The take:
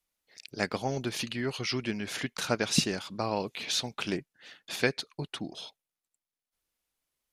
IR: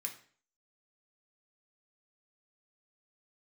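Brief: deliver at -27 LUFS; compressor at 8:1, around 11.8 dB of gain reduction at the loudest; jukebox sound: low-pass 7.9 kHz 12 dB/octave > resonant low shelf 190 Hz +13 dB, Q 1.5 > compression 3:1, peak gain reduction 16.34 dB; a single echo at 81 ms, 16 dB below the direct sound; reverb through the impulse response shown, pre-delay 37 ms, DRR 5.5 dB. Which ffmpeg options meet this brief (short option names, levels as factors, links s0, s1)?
-filter_complex "[0:a]acompressor=threshold=0.0251:ratio=8,aecho=1:1:81:0.158,asplit=2[s0][s1];[1:a]atrim=start_sample=2205,adelay=37[s2];[s1][s2]afir=irnorm=-1:irlink=0,volume=0.631[s3];[s0][s3]amix=inputs=2:normalize=0,lowpass=7900,lowshelf=f=190:t=q:w=1.5:g=13,acompressor=threshold=0.00631:ratio=3,volume=7.08"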